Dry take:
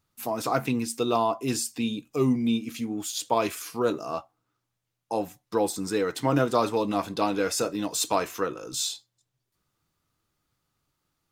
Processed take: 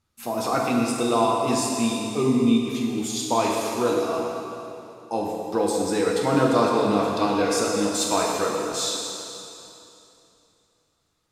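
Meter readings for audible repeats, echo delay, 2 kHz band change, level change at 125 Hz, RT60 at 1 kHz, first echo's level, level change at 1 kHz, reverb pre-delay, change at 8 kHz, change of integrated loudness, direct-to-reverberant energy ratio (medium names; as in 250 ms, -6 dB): no echo, no echo, +4.0 dB, +2.0 dB, 2.9 s, no echo, +4.5 dB, 4 ms, +3.5 dB, +4.0 dB, -2.0 dB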